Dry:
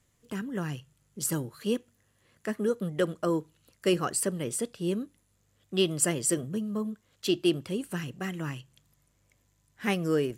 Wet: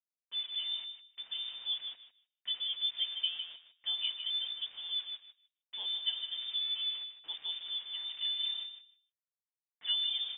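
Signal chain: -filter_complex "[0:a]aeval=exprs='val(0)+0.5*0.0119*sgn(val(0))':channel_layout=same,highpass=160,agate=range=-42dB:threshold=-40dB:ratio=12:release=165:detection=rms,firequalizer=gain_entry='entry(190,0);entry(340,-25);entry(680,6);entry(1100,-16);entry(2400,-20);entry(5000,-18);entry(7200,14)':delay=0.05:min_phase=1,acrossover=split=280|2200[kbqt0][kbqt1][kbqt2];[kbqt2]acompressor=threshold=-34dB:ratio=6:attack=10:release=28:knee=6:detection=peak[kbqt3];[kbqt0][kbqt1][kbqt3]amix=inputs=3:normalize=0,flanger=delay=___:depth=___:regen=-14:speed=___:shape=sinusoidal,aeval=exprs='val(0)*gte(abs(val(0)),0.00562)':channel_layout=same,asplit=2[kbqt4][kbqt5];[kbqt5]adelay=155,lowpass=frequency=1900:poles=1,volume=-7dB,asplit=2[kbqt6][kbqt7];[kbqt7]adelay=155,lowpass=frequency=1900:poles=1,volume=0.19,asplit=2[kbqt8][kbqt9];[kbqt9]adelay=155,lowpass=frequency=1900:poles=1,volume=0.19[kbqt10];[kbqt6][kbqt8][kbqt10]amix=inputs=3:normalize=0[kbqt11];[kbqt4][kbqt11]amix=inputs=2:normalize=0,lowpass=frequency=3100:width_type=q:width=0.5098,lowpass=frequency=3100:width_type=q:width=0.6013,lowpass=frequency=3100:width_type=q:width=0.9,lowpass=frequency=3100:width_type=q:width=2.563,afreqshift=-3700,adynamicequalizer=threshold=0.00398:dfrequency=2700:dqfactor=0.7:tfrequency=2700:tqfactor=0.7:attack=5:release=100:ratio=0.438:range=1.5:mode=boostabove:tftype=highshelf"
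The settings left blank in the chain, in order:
8.1, 6.8, 0.63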